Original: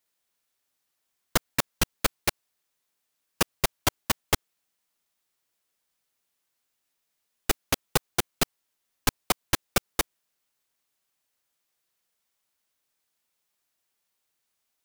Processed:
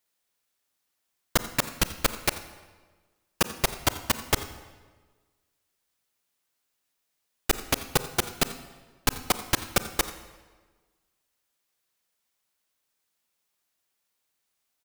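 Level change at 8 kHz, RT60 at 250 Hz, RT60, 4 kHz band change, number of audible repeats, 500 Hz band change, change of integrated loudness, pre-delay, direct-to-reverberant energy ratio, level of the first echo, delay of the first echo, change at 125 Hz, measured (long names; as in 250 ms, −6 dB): +0.5 dB, 1.5 s, 1.4 s, +0.5 dB, 1, +0.5 dB, +0.5 dB, 31 ms, 11.0 dB, −18.0 dB, 87 ms, +0.5 dB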